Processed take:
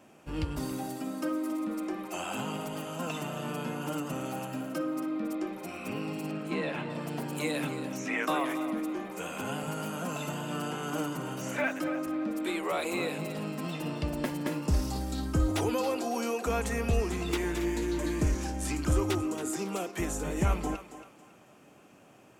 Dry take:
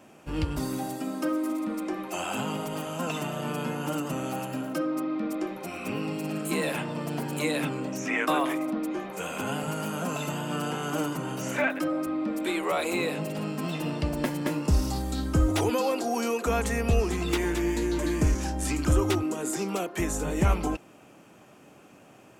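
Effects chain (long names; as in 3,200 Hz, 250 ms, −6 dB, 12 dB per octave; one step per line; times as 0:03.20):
0:06.31–0:06.90: low-pass filter 3,500 Hz 12 dB per octave
on a send: feedback echo with a high-pass in the loop 276 ms, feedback 34%, high-pass 350 Hz, level −11.5 dB
on the sum: level −4 dB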